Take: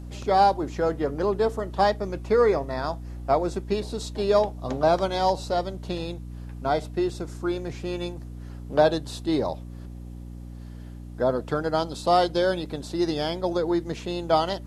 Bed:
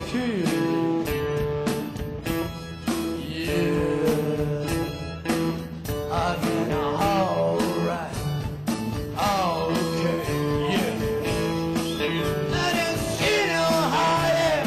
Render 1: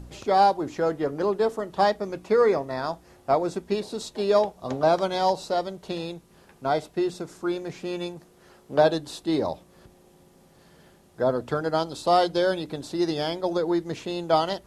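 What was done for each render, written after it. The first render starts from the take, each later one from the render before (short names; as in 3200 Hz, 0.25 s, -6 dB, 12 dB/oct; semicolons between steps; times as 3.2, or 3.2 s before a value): de-hum 60 Hz, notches 5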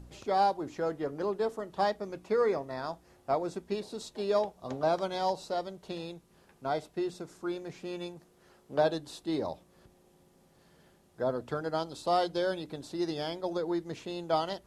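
gain -7.5 dB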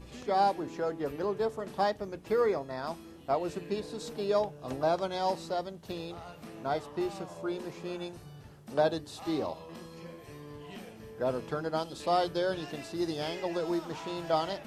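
add bed -22 dB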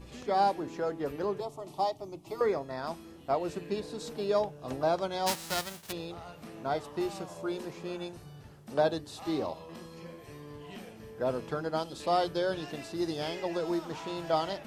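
1.4–2.41 fixed phaser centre 320 Hz, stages 8; 5.26–5.91 spectral whitening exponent 0.3; 6.84–7.65 high shelf 4300 Hz +5 dB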